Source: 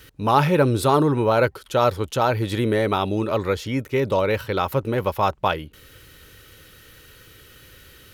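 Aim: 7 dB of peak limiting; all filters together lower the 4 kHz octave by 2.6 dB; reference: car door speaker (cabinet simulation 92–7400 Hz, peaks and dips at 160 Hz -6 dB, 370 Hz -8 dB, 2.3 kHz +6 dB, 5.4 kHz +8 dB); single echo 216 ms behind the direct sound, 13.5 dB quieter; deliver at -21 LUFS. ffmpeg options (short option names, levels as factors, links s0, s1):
-af "equalizer=f=4000:t=o:g=-5.5,alimiter=limit=0.282:level=0:latency=1,highpass=92,equalizer=f=160:t=q:w=4:g=-6,equalizer=f=370:t=q:w=4:g=-8,equalizer=f=2300:t=q:w=4:g=6,equalizer=f=5400:t=q:w=4:g=8,lowpass=f=7400:w=0.5412,lowpass=f=7400:w=1.3066,aecho=1:1:216:0.211,volume=1.41"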